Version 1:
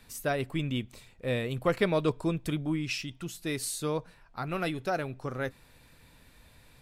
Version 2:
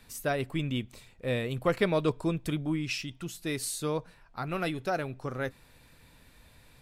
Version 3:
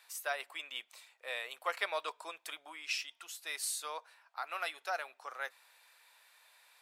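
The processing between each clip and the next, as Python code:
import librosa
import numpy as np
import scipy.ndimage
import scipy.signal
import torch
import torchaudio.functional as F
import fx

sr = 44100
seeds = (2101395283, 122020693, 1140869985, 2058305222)

y1 = x
y2 = scipy.signal.sosfilt(scipy.signal.butter(4, 740.0, 'highpass', fs=sr, output='sos'), y1)
y2 = y2 * 10.0 ** (-2.0 / 20.0)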